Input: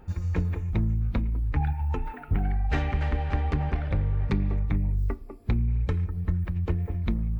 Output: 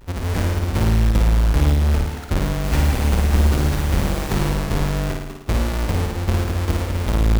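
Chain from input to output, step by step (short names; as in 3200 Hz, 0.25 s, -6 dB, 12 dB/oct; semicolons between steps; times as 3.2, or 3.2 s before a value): half-waves squared off; 2.63–4.48 added noise pink -37 dBFS; flutter echo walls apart 9.4 m, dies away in 0.88 s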